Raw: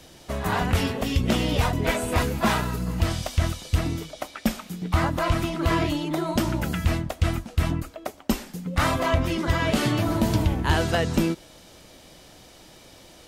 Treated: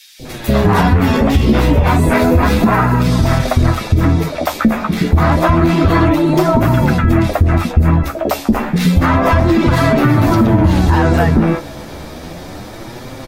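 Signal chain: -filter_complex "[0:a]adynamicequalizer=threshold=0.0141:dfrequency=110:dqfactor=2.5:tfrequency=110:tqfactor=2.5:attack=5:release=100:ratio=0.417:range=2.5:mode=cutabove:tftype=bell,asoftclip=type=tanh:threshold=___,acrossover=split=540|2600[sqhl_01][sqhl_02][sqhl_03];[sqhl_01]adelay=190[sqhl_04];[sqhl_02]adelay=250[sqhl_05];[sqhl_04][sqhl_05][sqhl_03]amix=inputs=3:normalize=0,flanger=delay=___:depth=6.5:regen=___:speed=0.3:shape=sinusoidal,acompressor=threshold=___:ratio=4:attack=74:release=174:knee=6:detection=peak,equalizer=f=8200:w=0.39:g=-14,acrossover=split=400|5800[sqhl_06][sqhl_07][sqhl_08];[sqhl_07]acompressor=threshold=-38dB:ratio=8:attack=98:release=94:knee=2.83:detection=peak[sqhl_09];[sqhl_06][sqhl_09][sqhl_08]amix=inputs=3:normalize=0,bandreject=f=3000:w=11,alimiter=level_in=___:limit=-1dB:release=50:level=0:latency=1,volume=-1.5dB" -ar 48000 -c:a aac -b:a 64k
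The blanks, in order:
-20.5dB, 7.5, 9, -37dB, 27.5dB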